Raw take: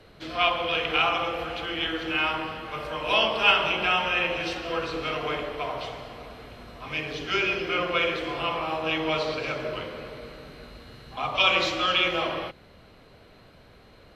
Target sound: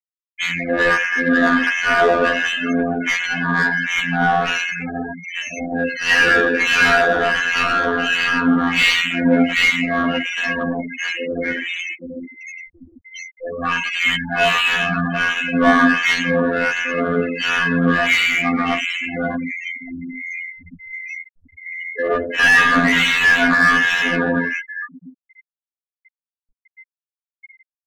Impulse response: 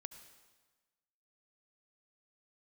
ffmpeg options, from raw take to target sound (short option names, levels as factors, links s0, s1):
-filter_complex "[0:a]asetrate=22403,aresample=44100,aexciter=amount=13.2:drive=5.8:freq=2000,highshelf=f=6100:g=5,asplit=2[s0][s1];[s1]aecho=0:1:1154:0.0841[s2];[s0][s2]amix=inputs=2:normalize=0,acrossover=split=1500[s3][s4];[s3]aeval=exprs='val(0)*(1-1/2+1/2*cos(2*PI*1.4*n/s))':c=same[s5];[s4]aeval=exprs='val(0)*(1-1/2-1/2*cos(2*PI*1.4*n/s))':c=same[s6];[s5][s6]amix=inputs=2:normalize=0,afftfilt=real='hypot(re,im)*cos(PI*b)':imag='0':win_size=2048:overlap=0.75,afftfilt=real='re*gte(hypot(re,im),0.0224)':imag='im*gte(hypot(re,im),0.0224)':win_size=1024:overlap=0.75,asplit=2[s7][s8];[s8]highpass=f=720:p=1,volume=17.8,asoftclip=type=tanh:threshold=0.531[s9];[s7][s9]amix=inputs=2:normalize=0,lowpass=f=3100:p=1,volume=0.501,lowshelf=f=410:g=7.5,aecho=1:1:4.2:0.82,volume=0.891"